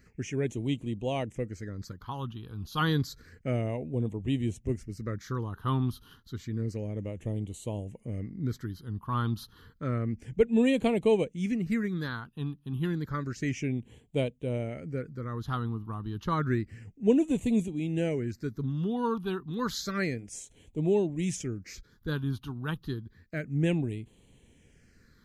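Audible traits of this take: phasing stages 6, 0.3 Hz, lowest notch 550–1400 Hz

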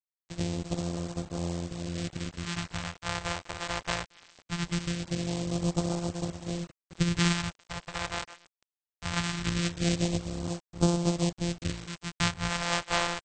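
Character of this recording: a buzz of ramps at a fixed pitch in blocks of 256 samples; phasing stages 2, 0.21 Hz, lowest notch 230–1900 Hz; a quantiser's noise floor 8-bit, dither none; AAC

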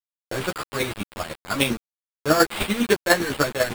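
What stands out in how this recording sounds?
aliases and images of a low sample rate 6 kHz, jitter 0%; chopped level 10 Hz, depth 60%, duty 20%; a quantiser's noise floor 6-bit, dither none; a shimmering, thickened sound

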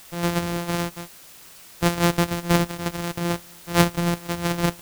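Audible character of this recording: a buzz of ramps at a fixed pitch in blocks of 256 samples; chopped level 0.7 Hz, depth 60%, duty 90%; a quantiser's noise floor 8-bit, dither triangular

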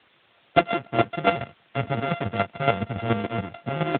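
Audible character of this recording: a buzz of ramps at a fixed pitch in blocks of 64 samples; chopped level 7.1 Hz, depth 65%, duty 20%; a quantiser's noise floor 10-bit, dither triangular; AMR-NB

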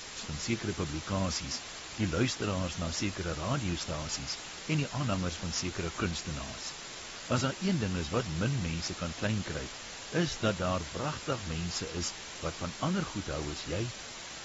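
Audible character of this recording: a quantiser's noise floor 6-bit, dither triangular; AAC

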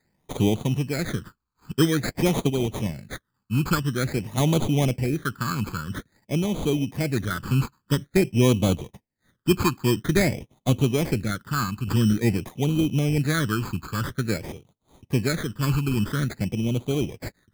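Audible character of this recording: aliases and images of a low sample rate 2.8 kHz, jitter 0%; phasing stages 12, 0.49 Hz, lowest notch 610–1700 Hz; random-step tremolo 1.6 Hz

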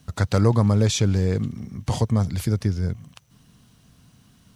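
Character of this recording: a quantiser's noise floor 12-bit, dither none

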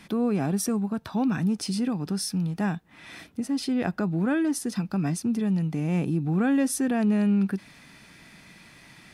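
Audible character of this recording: noise floor -52 dBFS; spectral tilt -6.0 dB/octave

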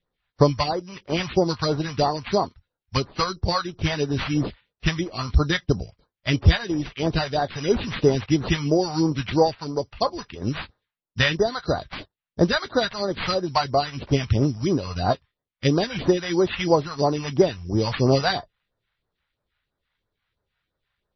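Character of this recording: aliases and images of a low sample rate 5.4 kHz, jitter 0%; phasing stages 2, 3 Hz, lowest notch 320–2700 Hz; MP3

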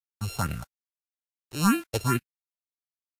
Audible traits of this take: a buzz of ramps at a fixed pitch in blocks of 32 samples; phasing stages 4, 2.4 Hz, lowest notch 190–1000 Hz; a quantiser's noise floor 8-bit, dither none; Vorbis

